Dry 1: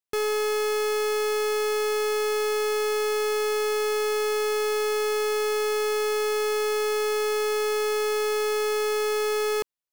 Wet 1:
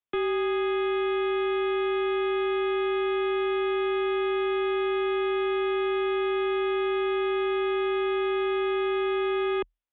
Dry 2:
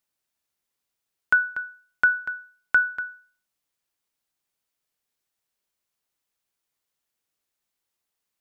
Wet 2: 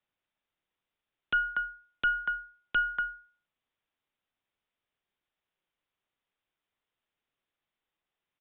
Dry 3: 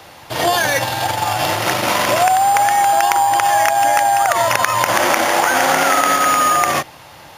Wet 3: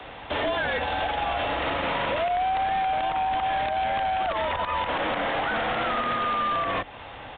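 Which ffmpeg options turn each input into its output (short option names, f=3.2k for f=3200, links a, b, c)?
-filter_complex "[0:a]acrossover=split=92|270|2500[a][b][c][d];[a]acompressor=threshold=-52dB:ratio=4[e];[b]acompressor=threshold=-41dB:ratio=4[f];[c]acompressor=threshold=-24dB:ratio=4[g];[d]acompressor=threshold=-32dB:ratio=4[h];[e][f][g][h]amix=inputs=4:normalize=0,aeval=exprs='0.447*(cos(1*acos(clip(val(0)/0.447,-1,1)))-cos(1*PI/2))+0.02*(cos(6*acos(clip(val(0)/0.447,-1,1)))-cos(6*PI/2))':c=same,aeval=exprs='0.1*(abs(mod(val(0)/0.1+3,4)-2)-1)':c=same,afreqshift=-41,aresample=8000,aresample=44100"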